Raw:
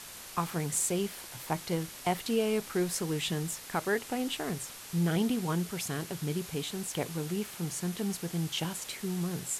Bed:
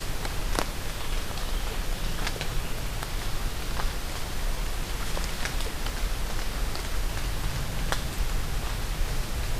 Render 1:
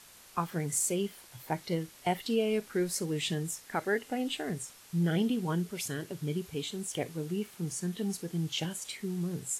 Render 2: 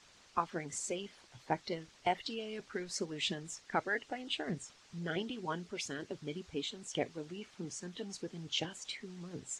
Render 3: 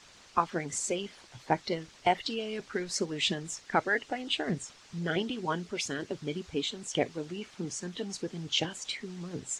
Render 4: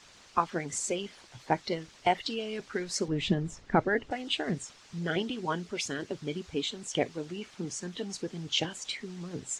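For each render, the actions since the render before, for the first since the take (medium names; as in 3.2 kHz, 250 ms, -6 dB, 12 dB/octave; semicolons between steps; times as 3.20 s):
noise print and reduce 9 dB
low-pass 6.6 kHz 24 dB/octave; harmonic-percussive split harmonic -14 dB
trim +6.5 dB
3.08–4.11 s: tilt EQ -3.5 dB/octave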